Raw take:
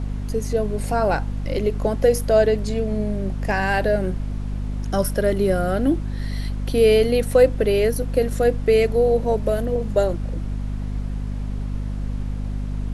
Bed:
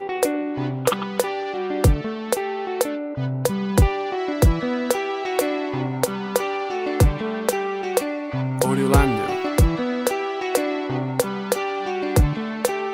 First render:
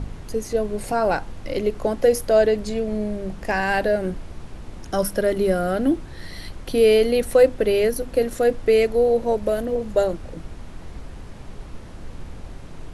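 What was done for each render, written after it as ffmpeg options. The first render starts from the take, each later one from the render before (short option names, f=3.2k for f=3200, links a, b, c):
-af "bandreject=f=50:t=h:w=4,bandreject=f=100:t=h:w=4,bandreject=f=150:t=h:w=4,bandreject=f=200:t=h:w=4,bandreject=f=250:t=h:w=4"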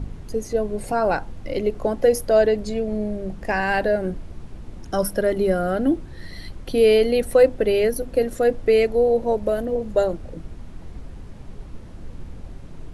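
-af "afftdn=nr=6:nf=-39"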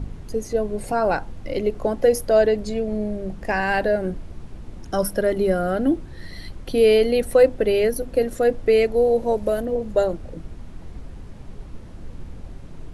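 -filter_complex "[0:a]asettb=1/sr,asplit=3[a][b][c];[a]atrim=end=8.964[d];[b]atrim=start=8.96:end=9.6,asetpts=PTS-STARTPTS,afade=t=in:d=0.004:c=qsin,afade=t=out:st=0.636:d=0.004:c=qsin,highshelf=f=5.5k:g=6[e];[c]atrim=start=9.596[f];[d][e]acrossfade=d=0.004:c1=hsin:c2=qsin[g];[g][f]acrossfade=d=0.004:c1=qsin:c2=hsin"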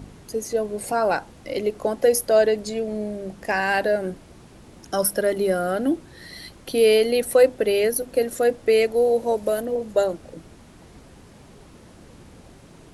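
-af "highpass=f=250:p=1,highshelf=f=5.4k:g=8.5"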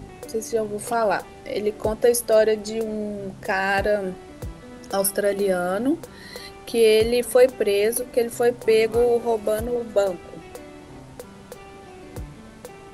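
-filter_complex "[1:a]volume=-18.5dB[a];[0:a][a]amix=inputs=2:normalize=0"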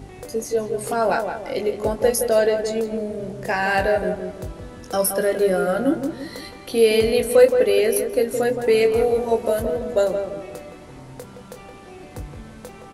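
-filter_complex "[0:a]asplit=2[a][b];[b]adelay=22,volume=-7dB[c];[a][c]amix=inputs=2:normalize=0,asplit=2[d][e];[e]adelay=169,lowpass=f=1.6k:p=1,volume=-6dB,asplit=2[f][g];[g]adelay=169,lowpass=f=1.6k:p=1,volume=0.42,asplit=2[h][i];[i]adelay=169,lowpass=f=1.6k:p=1,volume=0.42,asplit=2[j][k];[k]adelay=169,lowpass=f=1.6k:p=1,volume=0.42,asplit=2[l][m];[m]adelay=169,lowpass=f=1.6k:p=1,volume=0.42[n];[f][h][j][l][n]amix=inputs=5:normalize=0[o];[d][o]amix=inputs=2:normalize=0"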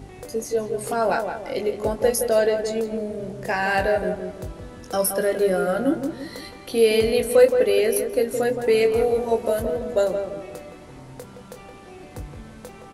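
-af "volume=-1.5dB"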